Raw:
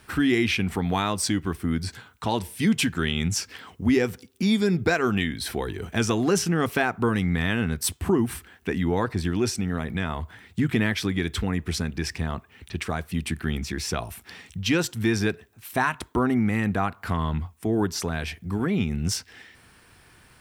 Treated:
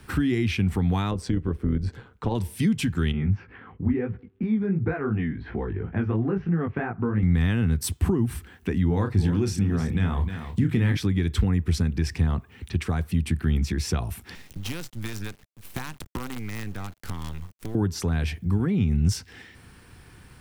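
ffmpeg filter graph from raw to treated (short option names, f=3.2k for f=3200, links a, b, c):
-filter_complex "[0:a]asettb=1/sr,asplit=3[a][b][c];[a]atrim=end=1.114[d];[b]atrim=start=1.11:end=2.35,asetpts=PTS-STARTPTS,afade=t=in:d=0.004:c=qsin,afade=t=out:st=1.236:d=0.004:c=qsin,lowpass=f=1.9k:p=1,equalizer=f=460:t=o:w=0.6:g=8,tremolo=f=130:d=0.571[e];[c]atrim=start=2.346[f];[d][e]acrossfade=d=0.004:c1=hsin:c2=qsin[g];[g][f]acrossfade=d=0.004:c1=qsin:c2=hsin,asettb=1/sr,asplit=3[h][i][j];[h]atrim=end=3.124[k];[i]atrim=start=3.12:end=7.23,asetpts=PTS-STARTPTS,afade=t=in:d=0.004:c=qsin,afade=t=out:st=4.106:d=0.004:c=qsin,lowpass=f=2.1k:w=0.5412,lowpass=f=2.1k:w=1.3066,flanger=delay=17.5:depth=3.7:speed=2.9[l];[j]atrim=start=7.226[m];[k][l]acrossfade=d=0.004:c1=hsin:c2=qsin[n];[n][m]acrossfade=d=0.004:c1=qsin:c2=hsin,asettb=1/sr,asplit=3[o][p][q];[o]atrim=end=8.874[r];[p]atrim=start=8.87:end=10.97,asetpts=PTS-STARTPTS,afade=t=in:d=0.004:c=qsin,afade=t=out:st=2.096:d=0.004:c=qsin,asplit=2[s][t];[t]adelay=30,volume=-7dB[u];[s][u]amix=inputs=2:normalize=0,atrim=end_sample=92610,aecho=1:1:309:0.237,atrim=end_sample=92610[v];[q]atrim=start=10.966[w];[r][v]acrossfade=d=0.004:c1=hsin:c2=qsin[x];[x][w]acrossfade=d=0.004:c1=qsin:c2=hsin,asettb=1/sr,asplit=3[y][z][aa];[y]atrim=end=14.354[ab];[z]atrim=start=14.35:end=17.75,asetpts=PTS-STARTPTS,afade=t=in:d=0.004:c=qsin,afade=t=out:st=3.396:d=0.004:c=qsin,equalizer=f=400:w=0.55:g=-5.5,acrossover=split=770|3300[ac][ad][ae];[ac]acompressor=threshold=-38dB:ratio=4[af];[ad]acompressor=threshold=-42dB:ratio=4[ag];[ae]acompressor=threshold=-42dB:ratio=4[ah];[af][ag][ah]amix=inputs=3:normalize=0,acrusher=bits=6:dc=4:mix=0:aa=0.000001[ai];[aa]atrim=start=17.746[aj];[ab][ai]acrossfade=d=0.004:c1=hsin:c2=qsin[ak];[ak][aj]acrossfade=d=0.004:c1=qsin:c2=hsin,lowshelf=f=340:g=9.5,bandreject=f=640:w=12,acrossover=split=120[al][am];[am]acompressor=threshold=-29dB:ratio=2[an];[al][an]amix=inputs=2:normalize=0"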